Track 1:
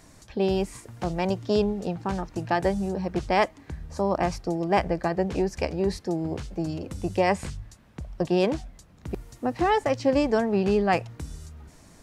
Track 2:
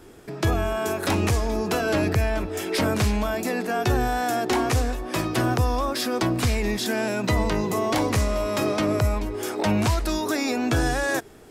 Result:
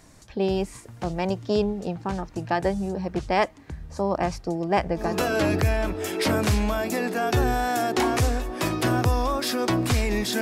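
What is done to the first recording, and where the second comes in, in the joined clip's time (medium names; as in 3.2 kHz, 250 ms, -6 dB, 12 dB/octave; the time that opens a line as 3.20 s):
track 1
5.10 s: go over to track 2 from 1.63 s, crossfade 0.34 s equal-power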